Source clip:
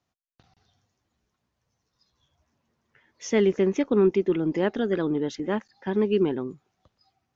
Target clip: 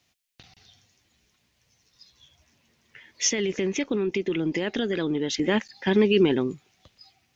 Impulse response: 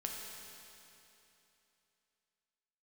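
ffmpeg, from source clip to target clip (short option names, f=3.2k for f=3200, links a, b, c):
-filter_complex "[0:a]highshelf=f=1.7k:t=q:w=1.5:g=8.5,alimiter=limit=-17dB:level=0:latency=1:release=17,asplit=3[a][b][c];[a]afade=t=out:st=3.28:d=0.02[d];[b]acompressor=threshold=-29dB:ratio=6,afade=t=in:st=3.28:d=0.02,afade=t=out:st=5.37:d=0.02[e];[c]afade=t=in:st=5.37:d=0.02[f];[d][e][f]amix=inputs=3:normalize=0,volume=6dB"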